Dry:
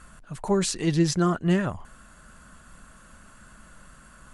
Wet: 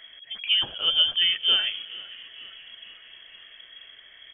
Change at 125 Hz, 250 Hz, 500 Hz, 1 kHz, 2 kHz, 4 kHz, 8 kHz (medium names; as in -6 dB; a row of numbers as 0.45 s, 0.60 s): under -25 dB, under -25 dB, -18.5 dB, -10.5 dB, +5.0 dB, +18.5 dB, under -40 dB